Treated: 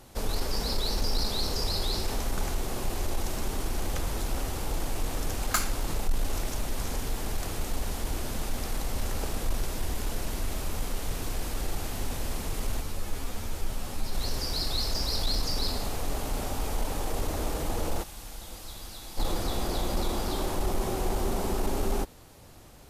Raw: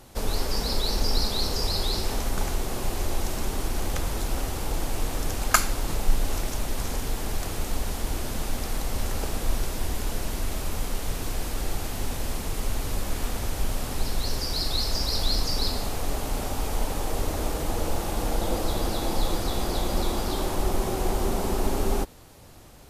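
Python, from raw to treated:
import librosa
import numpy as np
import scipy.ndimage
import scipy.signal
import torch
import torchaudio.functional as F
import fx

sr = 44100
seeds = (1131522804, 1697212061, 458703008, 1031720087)

y = fx.tone_stack(x, sr, knobs='5-5-5', at=(18.02, 19.17), fade=0.02)
y = 10.0 ** (-15.5 / 20.0) * np.tanh(y / 10.0 ** (-15.5 / 20.0))
y = fx.ensemble(y, sr, at=(12.8, 14.13), fade=0.02)
y = y * 10.0 ** (-2.0 / 20.0)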